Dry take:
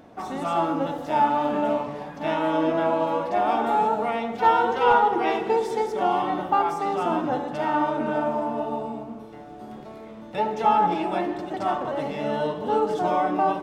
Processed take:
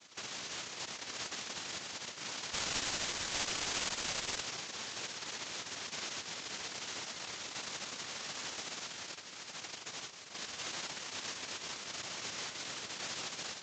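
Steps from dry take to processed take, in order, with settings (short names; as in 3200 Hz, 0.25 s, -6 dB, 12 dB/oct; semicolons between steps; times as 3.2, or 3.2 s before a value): sine-wave speech; compressor 3:1, threshold -40 dBFS, peak gain reduction 21 dB; dynamic EQ 650 Hz, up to +4 dB, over -48 dBFS, Q 0.82; flange 1.3 Hz, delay 0.9 ms, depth 7 ms, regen -28%; limiter -36.5 dBFS, peak gain reduction 11.5 dB; noise vocoder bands 1; 2.53–4.41 careless resampling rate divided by 8×, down none, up zero stuff; Vorbis 64 kbps 16000 Hz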